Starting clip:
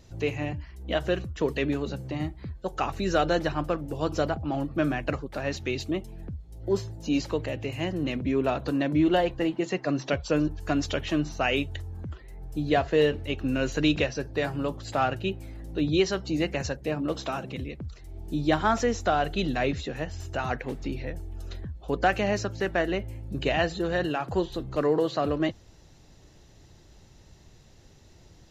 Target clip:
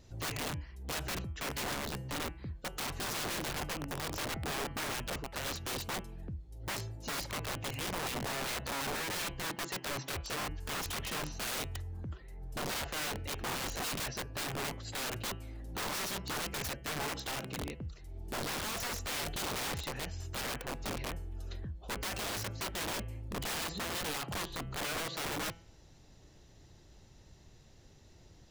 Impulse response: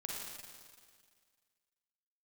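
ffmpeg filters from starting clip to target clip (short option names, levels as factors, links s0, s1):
-af "alimiter=limit=0.126:level=0:latency=1:release=13,aeval=exprs='(mod(22.4*val(0)+1,2)-1)/22.4':c=same,bandreject=f=166.2:t=h:w=4,bandreject=f=332.4:t=h:w=4,bandreject=f=498.6:t=h:w=4,bandreject=f=664.8:t=h:w=4,bandreject=f=831:t=h:w=4,bandreject=f=997.2:t=h:w=4,bandreject=f=1163.4:t=h:w=4,bandreject=f=1329.6:t=h:w=4,bandreject=f=1495.8:t=h:w=4,bandreject=f=1662:t=h:w=4,bandreject=f=1828.2:t=h:w=4,bandreject=f=1994.4:t=h:w=4,bandreject=f=2160.6:t=h:w=4,bandreject=f=2326.8:t=h:w=4,bandreject=f=2493:t=h:w=4,bandreject=f=2659.2:t=h:w=4,bandreject=f=2825.4:t=h:w=4,bandreject=f=2991.6:t=h:w=4,bandreject=f=3157.8:t=h:w=4,volume=0.596"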